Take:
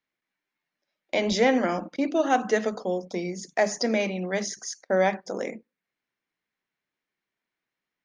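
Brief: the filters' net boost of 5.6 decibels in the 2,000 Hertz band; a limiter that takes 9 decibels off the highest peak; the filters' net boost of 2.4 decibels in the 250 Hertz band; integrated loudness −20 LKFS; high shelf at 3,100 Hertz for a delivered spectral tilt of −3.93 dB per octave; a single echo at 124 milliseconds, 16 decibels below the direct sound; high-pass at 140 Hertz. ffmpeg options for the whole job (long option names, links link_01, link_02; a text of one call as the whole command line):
ffmpeg -i in.wav -af "highpass=140,equalizer=frequency=250:width_type=o:gain=3.5,equalizer=frequency=2000:width_type=o:gain=8.5,highshelf=frequency=3100:gain=-6.5,alimiter=limit=-14.5dB:level=0:latency=1,aecho=1:1:124:0.158,volume=7dB" out.wav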